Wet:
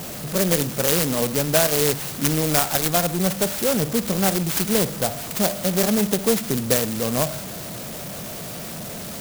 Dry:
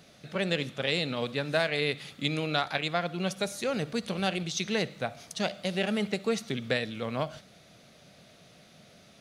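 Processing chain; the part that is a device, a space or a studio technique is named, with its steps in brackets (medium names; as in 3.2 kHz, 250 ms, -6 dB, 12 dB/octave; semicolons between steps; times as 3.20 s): early CD player with a faulty converter (jump at every zero crossing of -36 dBFS; sampling jitter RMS 0.15 ms); trim +8 dB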